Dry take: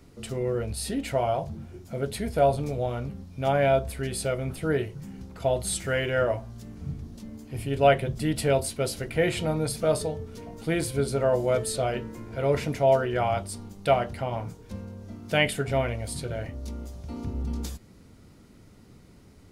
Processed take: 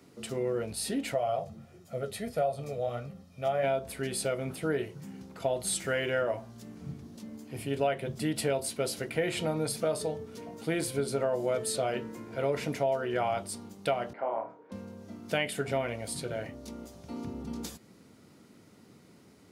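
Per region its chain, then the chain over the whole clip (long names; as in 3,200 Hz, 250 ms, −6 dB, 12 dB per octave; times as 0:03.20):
0:01.14–0:03.64: comb filter 1.6 ms, depth 59% + flanger 1.5 Hz, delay 5.4 ms, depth 5.2 ms, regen +66%
0:14.13–0:14.72: flat-topped band-pass 740 Hz, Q 0.66 + flutter between parallel walls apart 4.6 metres, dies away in 0.26 s
whole clip: high-pass filter 170 Hz 12 dB per octave; downward compressor 6 to 1, threshold −24 dBFS; level −1 dB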